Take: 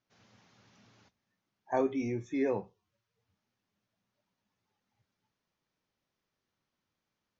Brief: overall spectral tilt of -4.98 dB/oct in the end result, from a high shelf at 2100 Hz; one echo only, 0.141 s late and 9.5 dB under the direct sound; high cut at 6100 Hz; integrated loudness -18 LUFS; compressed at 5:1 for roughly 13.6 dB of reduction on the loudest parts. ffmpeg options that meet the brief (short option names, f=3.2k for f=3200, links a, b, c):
-af "lowpass=6.1k,highshelf=f=2.1k:g=-5.5,acompressor=threshold=-40dB:ratio=5,aecho=1:1:141:0.335,volume=25.5dB"